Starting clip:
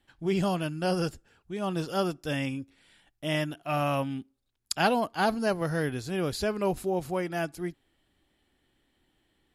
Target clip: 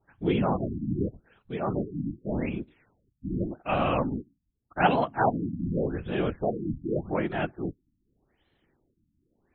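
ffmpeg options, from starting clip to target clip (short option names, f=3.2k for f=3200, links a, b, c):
-af "bandreject=f=101.8:t=h:w=4,bandreject=f=203.6:t=h:w=4,afftfilt=real='hypot(re,im)*cos(2*PI*random(0))':imag='hypot(re,im)*sin(2*PI*random(1))':win_size=512:overlap=0.75,afftfilt=real='re*lt(b*sr/1024,300*pow(4300/300,0.5+0.5*sin(2*PI*0.85*pts/sr)))':imag='im*lt(b*sr/1024,300*pow(4300/300,0.5+0.5*sin(2*PI*0.85*pts/sr)))':win_size=1024:overlap=0.75,volume=8dB"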